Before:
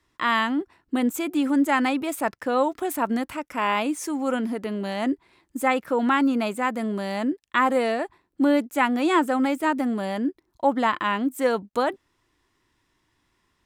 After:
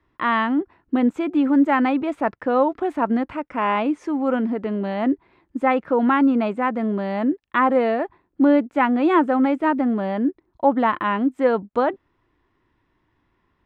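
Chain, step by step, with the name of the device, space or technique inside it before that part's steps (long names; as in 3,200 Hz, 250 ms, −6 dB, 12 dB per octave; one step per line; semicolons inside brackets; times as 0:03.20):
phone in a pocket (low-pass filter 3,100 Hz 12 dB per octave; high-shelf EQ 2,100 Hz −9.5 dB)
level +4.5 dB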